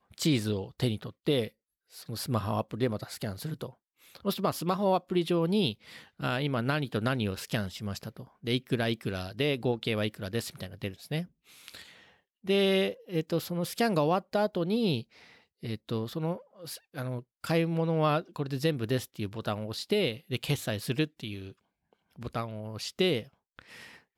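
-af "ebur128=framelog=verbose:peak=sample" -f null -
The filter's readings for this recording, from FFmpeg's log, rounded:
Integrated loudness:
  I:         -31.1 LUFS
  Threshold: -41.8 LUFS
Loudness range:
  LRA:         4.4 LU
  Threshold: -51.8 LUFS
  LRA low:   -34.1 LUFS
  LRA high:  -29.7 LUFS
Sample peak:
  Peak:      -16.1 dBFS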